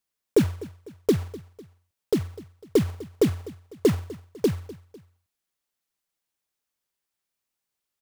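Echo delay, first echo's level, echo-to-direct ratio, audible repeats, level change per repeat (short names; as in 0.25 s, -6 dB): 0.25 s, -19.0 dB, -18.0 dB, 2, -6.5 dB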